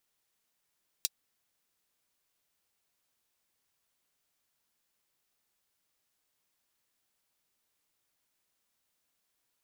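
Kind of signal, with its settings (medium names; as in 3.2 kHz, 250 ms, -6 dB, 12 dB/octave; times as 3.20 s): closed hi-hat, high-pass 4.1 kHz, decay 0.04 s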